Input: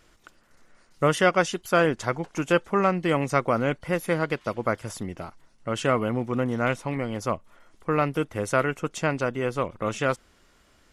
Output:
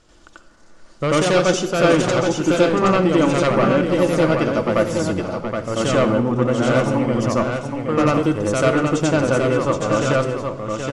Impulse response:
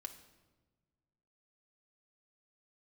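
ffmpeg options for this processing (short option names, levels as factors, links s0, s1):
-filter_complex "[0:a]lowpass=f=8600:w=0.5412,lowpass=f=8600:w=1.3066,equalizer=f=2100:t=o:w=0.85:g=-7.5,aeval=exprs='0.473*sin(PI/2*2.82*val(0)/0.473)':c=same,aecho=1:1:772:0.531,asplit=2[s0][s1];[1:a]atrim=start_sample=2205,adelay=89[s2];[s1][s2]afir=irnorm=-1:irlink=0,volume=2.66[s3];[s0][s3]amix=inputs=2:normalize=0,volume=0.355"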